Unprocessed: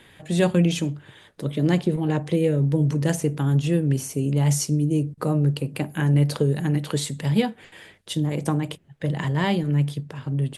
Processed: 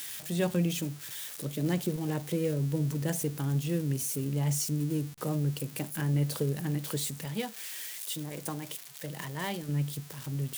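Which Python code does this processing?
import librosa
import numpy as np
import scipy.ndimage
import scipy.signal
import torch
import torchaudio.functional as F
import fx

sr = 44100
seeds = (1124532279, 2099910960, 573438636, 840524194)

y = x + 0.5 * 10.0 ** (-21.5 / 20.0) * np.diff(np.sign(x), prepend=np.sign(x[:1]))
y = fx.low_shelf(y, sr, hz=340.0, db=-8.5, at=(7.25, 9.69))
y = y * librosa.db_to_amplitude(-9.0)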